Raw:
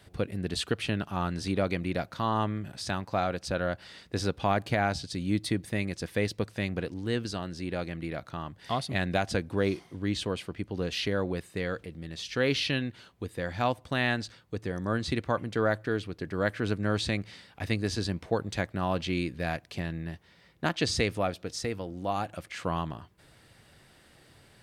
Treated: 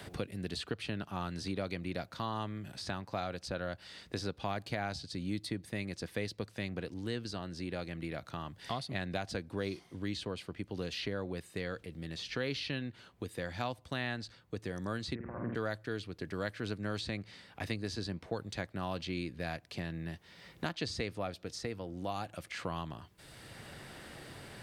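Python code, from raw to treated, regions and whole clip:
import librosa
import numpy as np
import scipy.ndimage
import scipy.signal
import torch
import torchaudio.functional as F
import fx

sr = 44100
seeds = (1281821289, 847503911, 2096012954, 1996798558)

y = fx.chain(x, sr, fx.steep_lowpass(hz=1900.0, slope=36),
    fx.over_compress(threshold_db=-33.0, ratio=-0.5),
    fx.room_flutter(wall_m=8.7, rt60_s=0.89), at=(15.15, 15.55))
y = fx.dynamic_eq(y, sr, hz=4400.0, q=2.8, threshold_db=-51.0, ratio=4.0, max_db=5)
y = fx.band_squash(y, sr, depth_pct=70)
y = y * librosa.db_to_amplitude(-8.5)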